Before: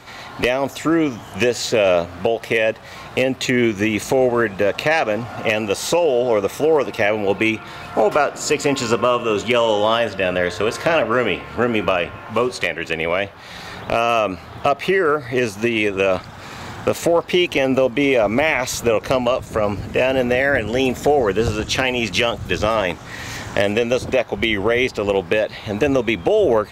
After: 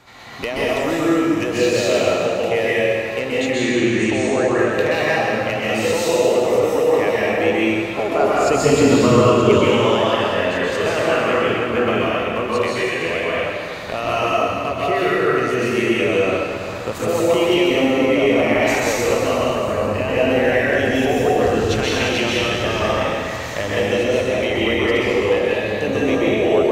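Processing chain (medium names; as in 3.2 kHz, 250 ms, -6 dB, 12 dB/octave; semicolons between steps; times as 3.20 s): 3.20–4.58 s: Chebyshev low-pass 9 kHz, order 6; 8.21–9.51 s: bass shelf 390 Hz +11.5 dB; plate-style reverb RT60 2.3 s, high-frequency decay 0.9×, pre-delay 115 ms, DRR -7.5 dB; trim -7.5 dB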